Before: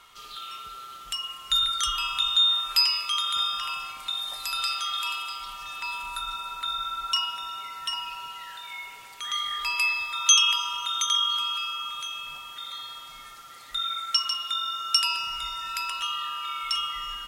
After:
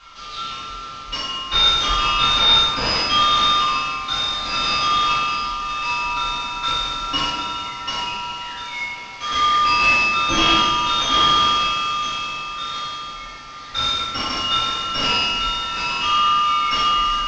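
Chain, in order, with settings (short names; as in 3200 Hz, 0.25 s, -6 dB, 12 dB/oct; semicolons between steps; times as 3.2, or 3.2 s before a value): CVSD 32 kbps; reverb RT60 1.0 s, pre-delay 4 ms, DRR -9.5 dB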